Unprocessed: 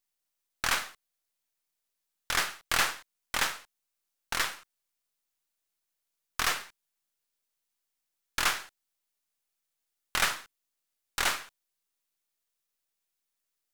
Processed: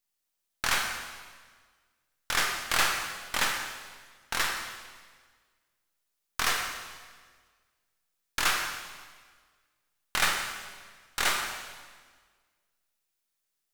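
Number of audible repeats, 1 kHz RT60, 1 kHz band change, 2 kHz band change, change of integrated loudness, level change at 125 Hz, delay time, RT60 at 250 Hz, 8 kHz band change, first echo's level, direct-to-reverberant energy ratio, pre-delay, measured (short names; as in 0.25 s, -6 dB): none, 1.5 s, +2.0 dB, +2.0 dB, +1.0 dB, +2.0 dB, none, 1.7 s, +2.0 dB, none, 2.0 dB, 13 ms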